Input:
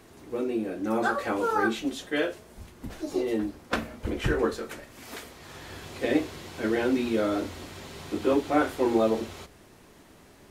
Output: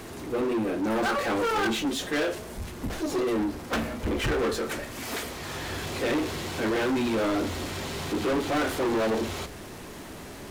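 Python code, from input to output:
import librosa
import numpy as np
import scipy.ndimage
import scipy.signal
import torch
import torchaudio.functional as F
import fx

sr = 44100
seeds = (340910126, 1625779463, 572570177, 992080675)

y = 10.0 ** (-28.5 / 20.0) * np.tanh(x / 10.0 ** (-28.5 / 20.0))
y = fx.power_curve(y, sr, exponent=0.7)
y = y * 10.0 ** (5.5 / 20.0)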